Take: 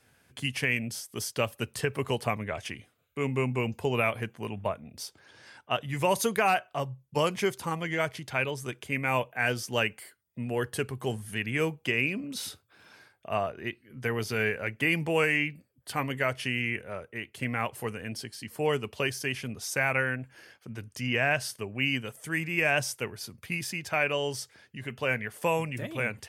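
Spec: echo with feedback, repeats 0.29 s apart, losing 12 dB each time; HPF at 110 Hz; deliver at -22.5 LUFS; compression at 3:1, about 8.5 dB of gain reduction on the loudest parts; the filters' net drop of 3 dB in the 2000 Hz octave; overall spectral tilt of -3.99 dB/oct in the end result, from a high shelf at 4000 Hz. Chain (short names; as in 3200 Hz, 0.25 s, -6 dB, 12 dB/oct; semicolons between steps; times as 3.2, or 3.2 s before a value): HPF 110 Hz; bell 2000 Hz -6 dB; high shelf 4000 Hz +7.5 dB; compressor 3:1, threshold -33 dBFS; feedback echo 0.29 s, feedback 25%, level -12 dB; gain +14 dB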